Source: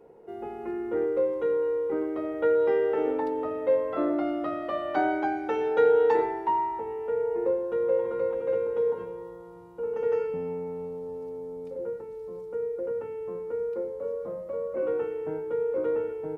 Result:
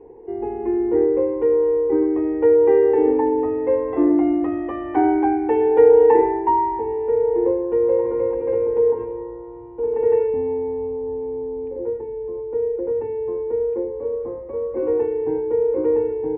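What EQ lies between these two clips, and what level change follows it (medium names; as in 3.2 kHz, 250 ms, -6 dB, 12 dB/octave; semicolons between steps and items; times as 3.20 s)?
low-pass 1.9 kHz 12 dB/octave; bass shelf 440 Hz +10.5 dB; static phaser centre 900 Hz, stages 8; +6.0 dB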